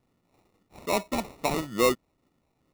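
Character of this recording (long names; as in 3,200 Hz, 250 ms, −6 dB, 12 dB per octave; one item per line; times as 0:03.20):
phaser sweep stages 2, 2.3 Hz, lowest notch 440–1,400 Hz
aliases and images of a low sample rate 1,600 Hz, jitter 0%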